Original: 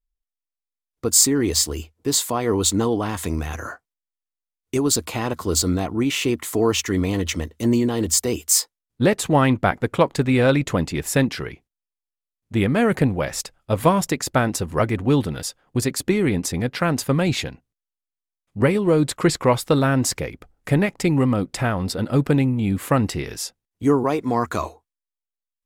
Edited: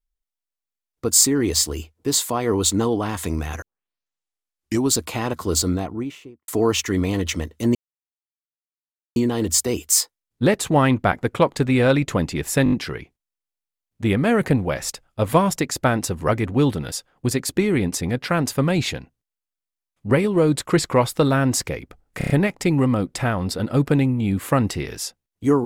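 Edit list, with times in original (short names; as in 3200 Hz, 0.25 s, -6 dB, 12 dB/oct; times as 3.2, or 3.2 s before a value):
3.62 tape start 1.31 s
5.54–6.48 studio fade out
7.75 insert silence 1.41 s
11.23 stutter 0.02 s, 5 plays
20.69 stutter 0.03 s, 5 plays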